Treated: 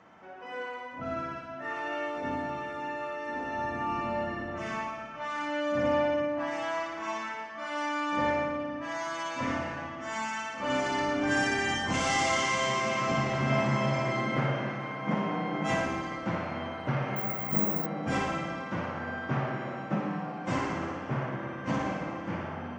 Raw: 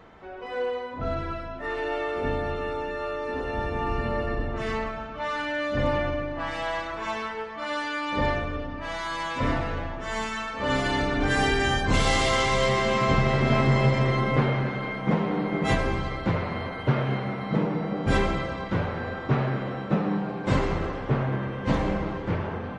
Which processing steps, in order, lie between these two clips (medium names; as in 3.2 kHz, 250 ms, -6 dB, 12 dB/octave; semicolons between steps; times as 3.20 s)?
cabinet simulation 160–8700 Hz, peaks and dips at 430 Hz -10 dB, 3.9 kHz -9 dB, 6.1 kHz +5 dB; flutter echo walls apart 9.9 m, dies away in 0.77 s; 17.16–17.86 s: careless resampling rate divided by 2×, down filtered, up zero stuff; trim -4.5 dB